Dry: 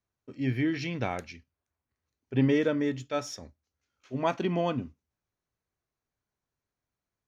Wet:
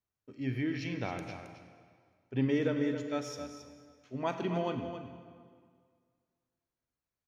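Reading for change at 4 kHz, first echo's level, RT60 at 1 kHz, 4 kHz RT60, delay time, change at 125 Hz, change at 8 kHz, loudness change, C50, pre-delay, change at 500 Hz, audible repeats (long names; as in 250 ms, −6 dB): −5.0 dB, −10.0 dB, 2.0 s, 1.6 s, 269 ms, −5.0 dB, can't be measured, −5.0 dB, 5.5 dB, 34 ms, −4.5 dB, 1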